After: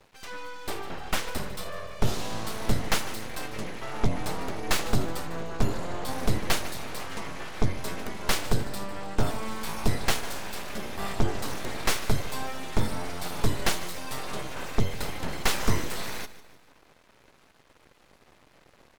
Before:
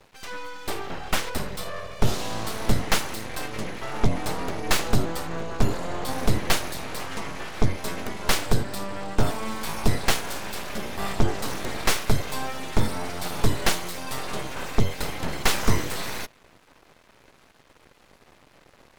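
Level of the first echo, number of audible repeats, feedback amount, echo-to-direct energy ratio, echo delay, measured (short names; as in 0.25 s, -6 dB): -16.0 dB, 3, 45%, -15.0 dB, 0.15 s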